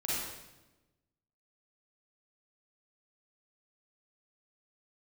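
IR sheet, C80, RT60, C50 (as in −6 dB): 0.5 dB, 1.1 s, −4.5 dB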